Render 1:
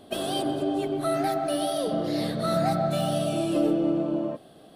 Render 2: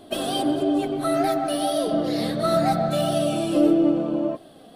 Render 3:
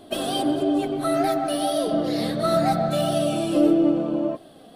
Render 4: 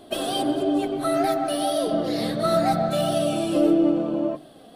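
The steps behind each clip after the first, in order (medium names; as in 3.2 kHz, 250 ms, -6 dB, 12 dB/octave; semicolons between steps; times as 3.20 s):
flange 1.6 Hz, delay 2.8 ms, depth 1.5 ms, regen +51%; trim +7.5 dB
no audible change
hum notches 50/100/150/200/250/300 Hz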